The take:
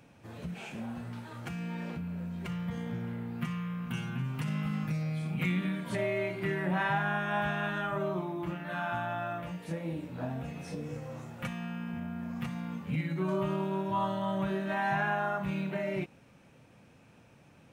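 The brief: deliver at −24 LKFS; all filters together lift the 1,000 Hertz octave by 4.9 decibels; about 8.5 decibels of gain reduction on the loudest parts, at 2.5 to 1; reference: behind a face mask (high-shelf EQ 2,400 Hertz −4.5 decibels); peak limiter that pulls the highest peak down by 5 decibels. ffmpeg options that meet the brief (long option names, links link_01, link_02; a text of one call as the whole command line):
ffmpeg -i in.wav -af "equalizer=frequency=1000:width_type=o:gain=7,acompressor=threshold=-35dB:ratio=2.5,alimiter=level_in=4.5dB:limit=-24dB:level=0:latency=1,volume=-4.5dB,highshelf=frequency=2400:gain=-4.5,volume=15dB" out.wav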